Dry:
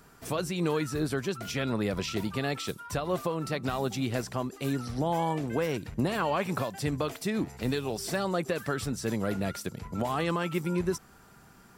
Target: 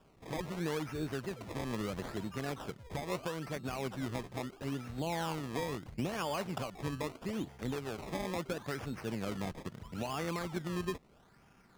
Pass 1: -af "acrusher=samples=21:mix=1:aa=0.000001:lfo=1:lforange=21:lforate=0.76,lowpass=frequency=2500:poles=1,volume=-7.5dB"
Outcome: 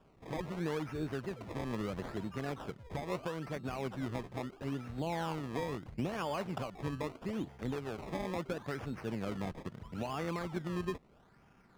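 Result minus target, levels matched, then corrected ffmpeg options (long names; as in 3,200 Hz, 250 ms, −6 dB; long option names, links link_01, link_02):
8,000 Hz band −6.5 dB
-af "acrusher=samples=21:mix=1:aa=0.000001:lfo=1:lforange=21:lforate=0.76,lowpass=frequency=7600:poles=1,volume=-7.5dB"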